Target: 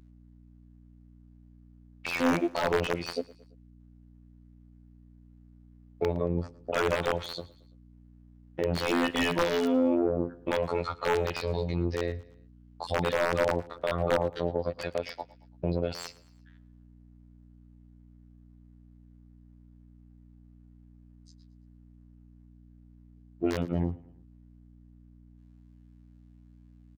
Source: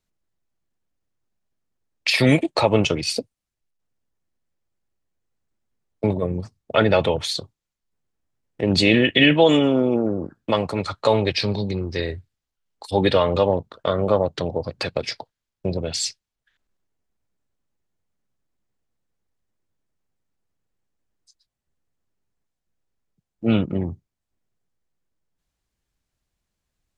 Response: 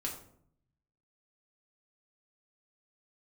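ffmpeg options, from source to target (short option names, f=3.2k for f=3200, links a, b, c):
-filter_complex "[0:a]afftfilt=real='hypot(re,im)*cos(PI*b)':imag='0':win_size=2048:overlap=0.75,aeval=exprs='val(0)+0.00158*(sin(2*PI*60*n/s)+sin(2*PI*2*60*n/s)/2+sin(2*PI*3*60*n/s)/3+sin(2*PI*4*60*n/s)/4+sin(2*PI*5*60*n/s)/5)':c=same,aeval=exprs='(mod(3.35*val(0)+1,2)-1)/3.35':c=same,alimiter=limit=-21dB:level=0:latency=1:release=412,asplit=2[a][b];[b]highpass=f=720:p=1,volume=7dB,asoftclip=type=tanh:threshold=-21dB[c];[a][c]amix=inputs=2:normalize=0,lowpass=f=1.1k:p=1,volume=-6dB,asplit=2[d][e];[e]aecho=0:1:112|224|336:0.0891|0.0428|0.0205[f];[d][f]amix=inputs=2:normalize=0,volume=8.5dB"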